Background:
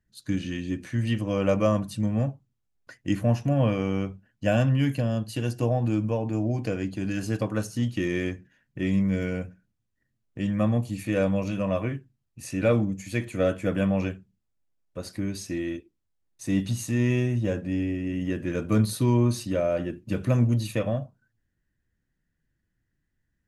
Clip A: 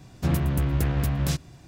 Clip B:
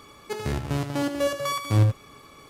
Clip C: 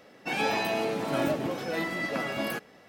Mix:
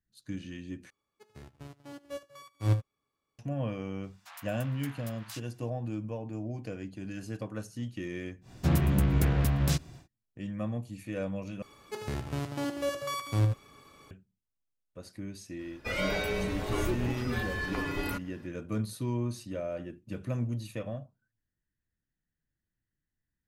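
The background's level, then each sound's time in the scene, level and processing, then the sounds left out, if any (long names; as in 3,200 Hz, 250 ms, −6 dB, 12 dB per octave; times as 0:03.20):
background −10.5 dB
0:00.90: overwrite with B −5.5 dB + expander for the loud parts 2.5 to 1, over −35 dBFS
0:04.03: mix in A −11 dB + Butterworth high-pass 840 Hz
0:08.41: mix in A −1.5 dB, fades 0.10 s
0:11.62: overwrite with B −7 dB
0:15.59: mix in C −2.5 dB + frequency shifter −250 Hz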